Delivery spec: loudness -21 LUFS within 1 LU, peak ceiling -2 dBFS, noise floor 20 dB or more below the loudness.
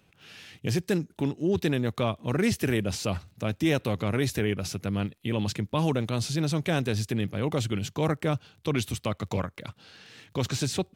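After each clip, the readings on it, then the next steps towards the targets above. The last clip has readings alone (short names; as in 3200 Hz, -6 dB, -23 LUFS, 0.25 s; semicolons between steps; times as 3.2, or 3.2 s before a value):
ticks 23/s; loudness -29.0 LUFS; peak -11.5 dBFS; loudness target -21.0 LUFS
-> de-click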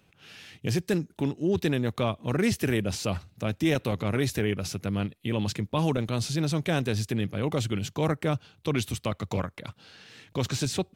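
ticks 0.37/s; loudness -29.0 LUFS; peak -11.5 dBFS; loudness target -21.0 LUFS
-> gain +8 dB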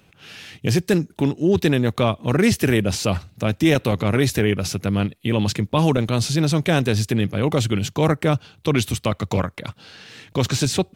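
loudness -21.0 LUFS; peak -3.5 dBFS; noise floor -57 dBFS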